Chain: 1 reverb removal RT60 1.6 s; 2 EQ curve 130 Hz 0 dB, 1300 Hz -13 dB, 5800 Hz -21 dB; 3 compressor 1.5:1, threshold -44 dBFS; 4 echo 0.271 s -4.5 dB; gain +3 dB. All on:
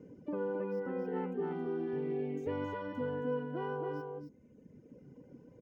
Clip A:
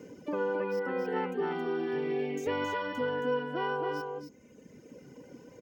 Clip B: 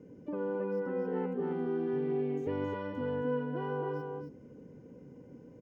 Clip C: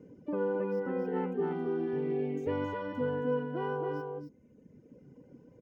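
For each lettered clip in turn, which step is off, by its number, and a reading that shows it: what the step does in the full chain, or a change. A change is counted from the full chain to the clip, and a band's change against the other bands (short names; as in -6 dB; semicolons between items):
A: 2, 2 kHz band +8.0 dB; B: 1, loudness change +2.5 LU; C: 3, mean gain reduction 2.5 dB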